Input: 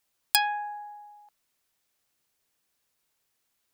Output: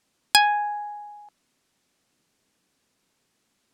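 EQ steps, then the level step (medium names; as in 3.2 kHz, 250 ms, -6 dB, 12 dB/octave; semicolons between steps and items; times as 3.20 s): low-pass 8.9 kHz 12 dB/octave; peaking EQ 230 Hz +11 dB 1.7 oct; +6.5 dB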